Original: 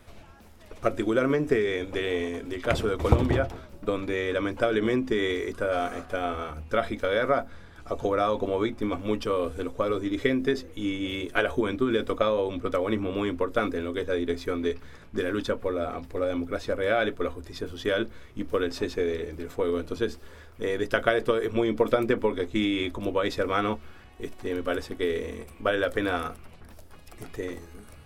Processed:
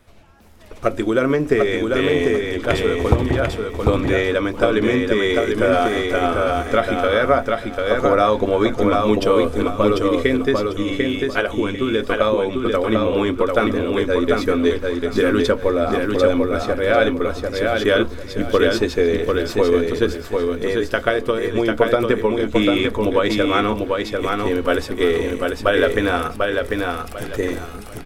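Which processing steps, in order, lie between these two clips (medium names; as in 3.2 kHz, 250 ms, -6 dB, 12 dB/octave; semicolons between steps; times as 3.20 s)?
level rider gain up to 13 dB; on a send: feedback delay 745 ms, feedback 25%, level -3.5 dB; on the sum: trim -1.5 dB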